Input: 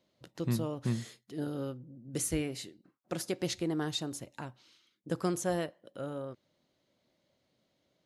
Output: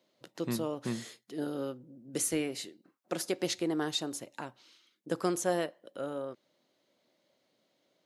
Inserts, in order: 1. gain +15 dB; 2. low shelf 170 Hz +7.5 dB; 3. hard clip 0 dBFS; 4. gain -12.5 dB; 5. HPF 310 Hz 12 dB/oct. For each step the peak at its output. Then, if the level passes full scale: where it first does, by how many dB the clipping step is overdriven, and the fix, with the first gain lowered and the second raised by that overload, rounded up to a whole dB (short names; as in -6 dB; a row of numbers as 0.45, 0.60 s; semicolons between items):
-5.0, -1.5, -1.5, -14.0, -15.5 dBFS; no overload